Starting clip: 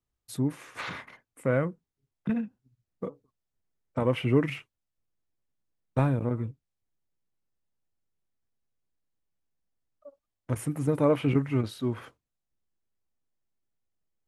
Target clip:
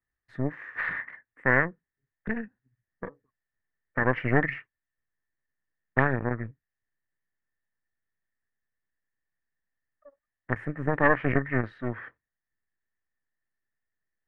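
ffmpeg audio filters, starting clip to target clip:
-af "aeval=exprs='0.335*(cos(1*acos(clip(val(0)/0.335,-1,1)))-cos(1*PI/2))+0.15*(cos(4*acos(clip(val(0)/0.335,-1,1)))-cos(4*PI/2))':c=same,lowpass=f=1.8k:t=q:w=14,volume=-5.5dB"

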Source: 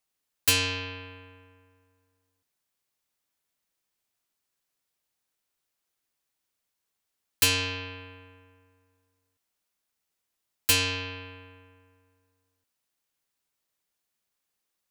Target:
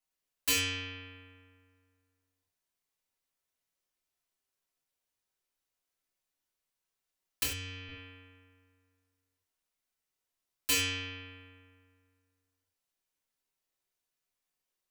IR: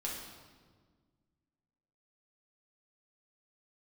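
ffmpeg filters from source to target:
-filter_complex "[0:a]asettb=1/sr,asplit=3[a][b][c];[a]atrim=end=7.434[d];[b]atrim=start=7.43:end=7.89,asetpts=PTS-STARTPTS,afade=t=in:d=0.004:c=qsin,afade=t=out:st=0.456:d=0.004:c=qsin,acrossover=split=130[e][f];[f]acompressor=threshold=-41dB:ratio=2[g];[e][g]amix=inputs=2:normalize=0[h];[c]atrim=start=7.886[i];[d][h]acrossfade=d=0.004:c1=hsin:c2=qsin[j];[j][i]acrossfade=d=0.004:c1=qsin:c2=hsin[k];[1:a]atrim=start_sample=2205,afade=t=out:st=0.22:d=0.01,atrim=end_sample=10143,asetrate=74970,aresample=44100[l];[k][l]afir=irnorm=-1:irlink=0,volume=-1.5dB"

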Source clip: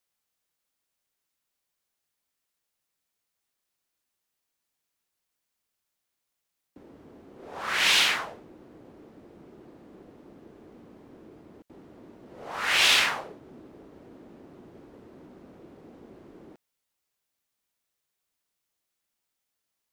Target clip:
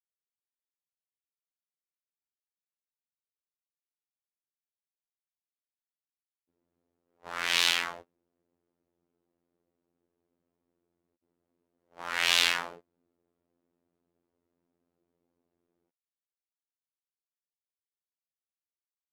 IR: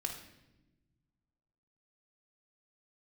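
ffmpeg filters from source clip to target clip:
-af "asetrate=45938,aresample=44100,afftfilt=real='hypot(re,im)*cos(PI*b)':imag='0':win_size=2048:overlap=0.75,agate=range=-27dB:threshold=-42dB:ratio=16:detection=peak,volume=-1dB"

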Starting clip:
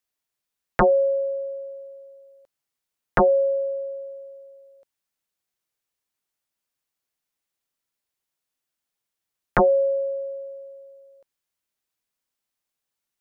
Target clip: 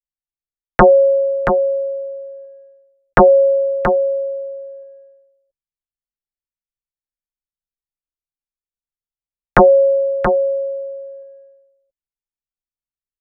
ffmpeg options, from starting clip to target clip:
-af "aecho=1:1:678:0.422,anlmdn=0.0631,volume=8.5dB"

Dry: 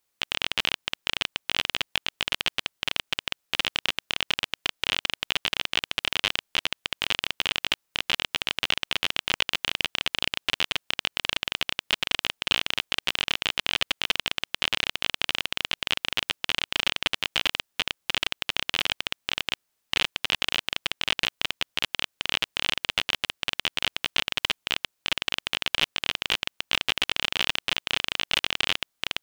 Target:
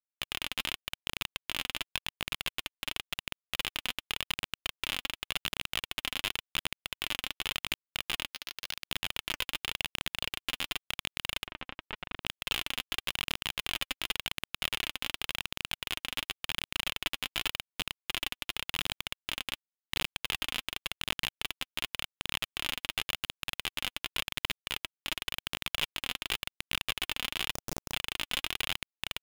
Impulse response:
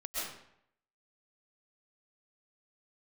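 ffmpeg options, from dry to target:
-filter_complex "[0:a]asettb=1/sr,asplit=3[a][b][c];[a]atrim=end=8.324[d];[b]atrim=start=8.32:end=8.87,asetpts=PTS-STARTPTS,afade=t=in:d=0.004:c=qsin,afade=t=out:st=0.546:d=0.004:c=qsin,aderivative[e];[c]atrim=start=8.866[f];[d][e]acrossfade=d=0.004:c1=hsin:c2=qsin[g];[g][f]acrossfade=d=0.004:c1=qsin:c2=hsin,acrusher=bits=4:dc=4:mix=0:aa=0.000001,asettb=1/sr,asplit=3[h][i][j];[h]atrim=end=11.474[k];[i]atrim=start=11.47:end=12.26,asetpts=PTS-STARTPTS,afade=t=in:d=0.004:c=qsin,afade=t=out:st=0.786:d=0.004:c=qsin,lowpass=1.8k[l];[j]atrim=start=12.256[m];[k][l]acrossfade=d=0.004:c1=hsin:c2=qsin[n];[n][m]acrossfade=d=0.004:c1=qsin:c2=hsin,asettb=1/sr,asplit=3[o][p][q];[o]atrim=end=27.514[r];[p]atrim=start=27.51:end=27.92,asetpts=PTS-STARTPTS,afade=t=in:d=0.004:c=qsin,afade=t=out:st=0.406:d=0.004:c=qsin,aeval=exprs='(mod(4.22*val(0)+1,2)-1)/4.22':c=same[s];[q]atrim=start=27.916[t];[r][s]acrossfade=d=0.004:c1=hsin:c2=qsin[u];[u][t]acrossfade=d=0.004:c1=qsin:c2=hsin,aphaser=in_gain=1:out_gain=1:delay=4.1:decay=0.34:speed=0.9:type=triangular,volume=-8dB"

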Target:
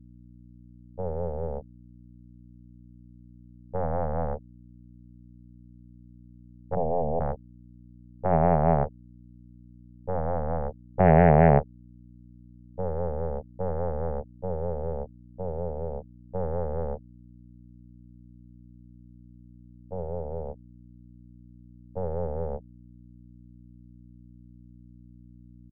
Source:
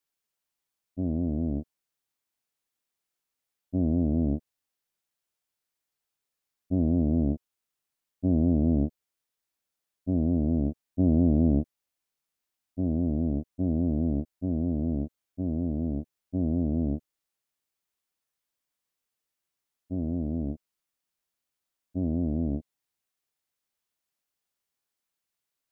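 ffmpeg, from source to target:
-filter_complex "[0:a]asplit=3[a][b][c];[a]afade=t=out:st=6.75:d=0.02[d];[b]asuperstop=centerf=710:order=12:qfactor=0.7,afade=t=in:st=6.75:d=0.02,afade=t=out:st=7.19:d=0.02[e];[c]afade=t=in:st=7.19:d=0.02[f];[d][e][f]amix=inputs=3:normalize=0,anlmdn=6.31,aeval=exprs='0.251*(cos(1*acos(clip(val(0)/0.251,-1,1)))-cos(1*PI/2))+0.00355*(cos(2*acos(clip(val(0)/0.251,-1,1)))-cos(2*PI/2))+0.0631*(cos(3*acos(clip(val(0)/0.251,-1,1)))-cos(3*PI/2))+0.0631*(cos(6*acos(clip(val(0)/0.251,-1,1)))-cos(6*PI/2))+0.0158*(cos(8*acos(clip(val(0)/0.251,-1,1)))-cos(8*PI/2))':c=same,firequalizer=gain_entry='entry(110,0);entry(200,-4);entry(290,-29);entry(420,2);entry(760,7);entry(1100,-5);entry(1800,7)':delay=0.05:min_phase=1,aeval=exprs='val(0)+0.00158*(sin(2*PI*60*n/s)+sin(2*PI*2*60*n/s)/2+sin(2*PI*3*60*n/s)/3+sin(2*PI*4*60*n/s)/4+sin(2*PI*5*60*n/s)/5)':c=same,equalizer=f=200:t=o:w=2.6:g=12"

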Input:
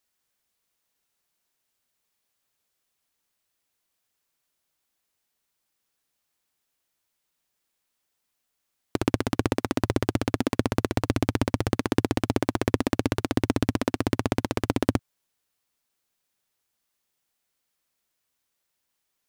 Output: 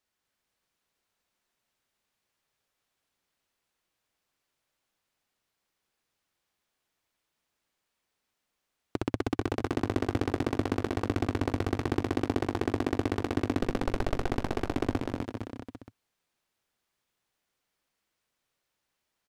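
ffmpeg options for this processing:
-filter_complex "[0:a]alimiter=limit=-13dB:level=0:latency=1:release=327,lowpass=f=3.5k:p=1,asettb=1/sr,asplit=3[a][b][c];[a]atrim=end=13.604[d];[b]atrim=start=13.6:end=14.32,asetpts=PTS-STARTPTS,afade=t=in:d=0.004:c=qsin,afade=t=out:st=0.716:d=0.004:c=qsin,aeval=exprs='abs(val(0))':c=same[e];[c]atrim=start=14.316[f];[d][e]acrossfade=d=0.004:c1=hsin:c2=qsin[g];[g][f]acrossfade=d=0.004:c1=qsin:c2=hsin,aecho=1:1:250|462.5|643.1|796.7|927.2:0.631|0.398|0.251|0.158|0.1"

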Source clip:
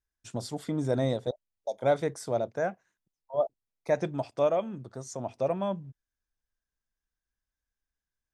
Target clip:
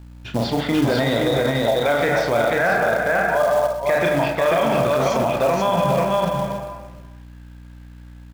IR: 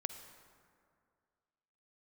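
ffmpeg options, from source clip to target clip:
-filter_complex "[0:a]asplit=2[a][b];[b]adelay=35,volume=-5.5dB[c];[a][c]amix=inputs=2:normalize=0[d];[1:a]atrim=start_sample=2205,asetrate=66150,aresample=44100[e];[d][e]afir=irnorm=-1:irlink=0,areverse,acompressor=threshold=-42dB:ratio=4,areverse,lowpass=f=3.4k:w=0.5412,lowpass=f=3.4k:w=1.3066,bandreject=f=50:t=h:w=6,bandreject=f=100:t=h:w=6,bandreject=f=150:t=h:w=6,bandreject=f=200:t=h:w=6,aecho=1:1:489:0.596,aeval=exprs='val(0)+0.000562*(sin(2*PI*60*n/s)+sin(2*PI*2*60*n/s)/2+sin(2*PI*3*60*n/s)/3+sin(2*PI*4*60*n/s)/4+sin(2*PI*5*60*n/s)/5)':c=same,acrossover=split=1100[f][g];[f]acrusher=bits=4:mode=log:mix=0:aa=0.000001[h];[g]dynaudnorm=f=110:g=11:m=13dB[i];[h][i]amix=inputs=2:normalize=0,alimiter=level_in=35dB:limit=-1dB:release=50:level=0:latency=1,volume=-9dB"

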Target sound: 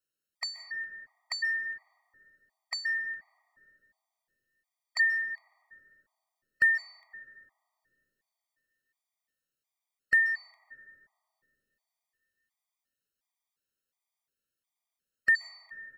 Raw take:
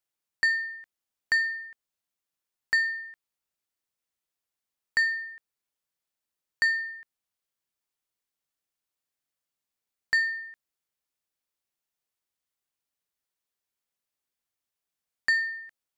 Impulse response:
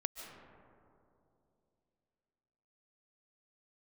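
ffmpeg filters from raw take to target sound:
-filter_complex "[0:a]asplit=2[a][b];[b]adelay=130,highpass=300,lowpass=3.4k,asoftclip=type=hard:threshold=-23.5dB,volume=-20dB[c];[a][c]amix=inputs=2:normalize=0,asplit=2[d][e];[1:a]atrim=start_sample=2205[f];[e][f]afir=irnorm=-1:irlink=0,volume=3.5dB[g];[d][g]amix=inputs=2:normalize=0,afftfilt=real='re*gt(sin(2*PI*1.4*pts/sr)*(1-2*mod(floor(b*sr/1024/630),2)),0)':imag='im*gt(sin(2*PI*1.4*pts/sr)*(1-2*mod(floor(b*sr/1024/630),2)),0)':win_size=1024:overlap=0.75,volume=-6dB"

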